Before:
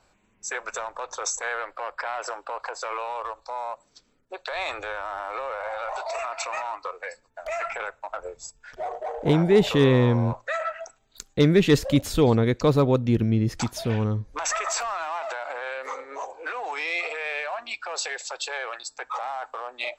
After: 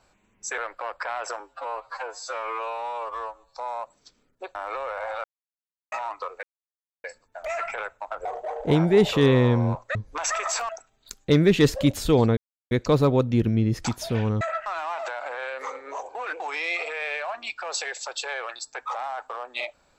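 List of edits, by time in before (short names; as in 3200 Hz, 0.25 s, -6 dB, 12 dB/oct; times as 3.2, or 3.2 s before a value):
0.58–1.56 cut
2.38–3.46 stretch 2×
4.45–5.18 cut
5.87–6.55 mute
7.06 insert silence 0.61 s
8.27–8.83 cut
10.53–10.78 swap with 14.16–14.9
12.46 insert silence 0.34 s
16.39–16.64 reverse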